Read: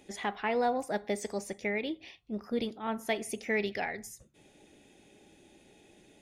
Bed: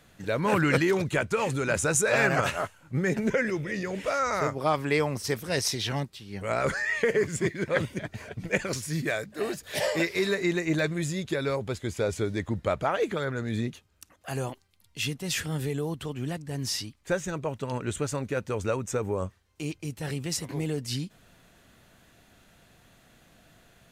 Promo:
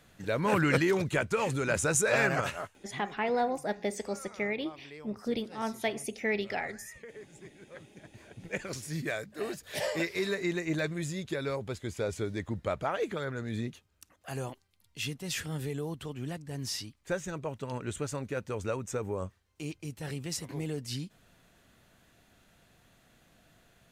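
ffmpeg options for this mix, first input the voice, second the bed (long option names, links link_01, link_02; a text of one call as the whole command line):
ffmpeg -i stem1.wav -i stem2.wav -filter_complex "[0:a]adelay=2750,volume=0dB[link_01];[1:a]volume=15.5dB,afade=type=out:start_time=2.14:duration=0.89:silence=0.0944061,afade=type=in:start_time=7.88:duration=1.14:silence=0.125893[link_02];[link_01][link_02]amix=inputs=2:normalize=0" out.wav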